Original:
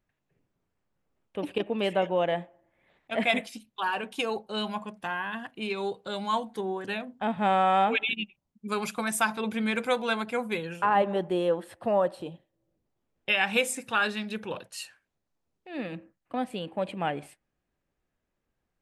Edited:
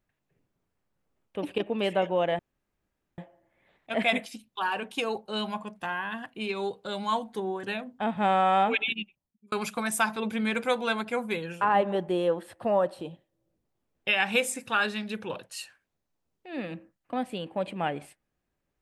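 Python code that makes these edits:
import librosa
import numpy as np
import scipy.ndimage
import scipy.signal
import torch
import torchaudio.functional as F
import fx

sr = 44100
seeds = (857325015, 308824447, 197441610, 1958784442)

y = fx.edit(x, sr, fx.insert_room_tone(at_s=2.39, length_s=0.79),
    fx.fade_out_span(start_s=8.1, length_s=0.63), tone=tone)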